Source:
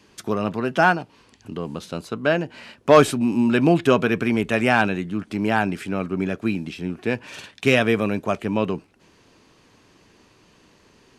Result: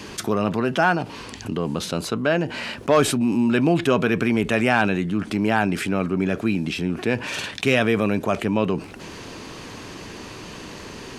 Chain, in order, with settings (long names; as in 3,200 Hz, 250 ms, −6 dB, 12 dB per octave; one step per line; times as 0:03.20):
envelope flattener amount 50%
level −5 dB